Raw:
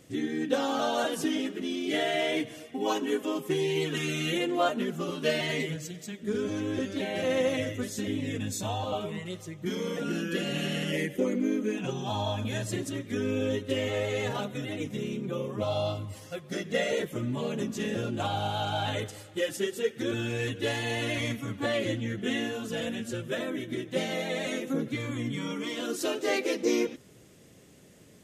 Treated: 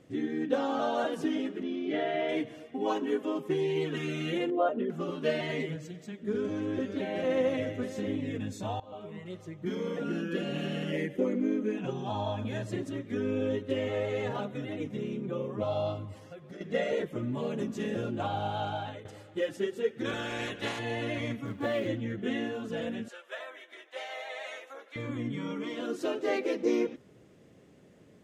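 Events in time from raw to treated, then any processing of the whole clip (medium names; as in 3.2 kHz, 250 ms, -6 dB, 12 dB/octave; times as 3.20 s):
1.63–2.29 s: distance through air 160 m
4.50–4.90 s: resonances exaggerated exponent 1.5
5.85–8.16 s: delay 592 ms -13.5 dB
8.80–9.46 s: fade in, from -21 dB
10.21–10.87 s: band-stop 2 kHz, Q 11
16.16–16.61 s: compression, threshold -40 dBFS
17.35–18.12 s: peaking EQ 11 kHz +6 dB 1.7 oct
18.65–19.05 s: fade out, to -16.5 dB
20.04–20.78 s: spectral peaks clipped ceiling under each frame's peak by 21 dB
21.45–21.87 s: short-mantissa float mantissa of 2-bit
23.08–24.96 s: high-pass 700 Hz 24 dB/octave
whole clip: low-pass 1.4 kHz 6 dB/octave; bass shelf 120 Hz -6 dB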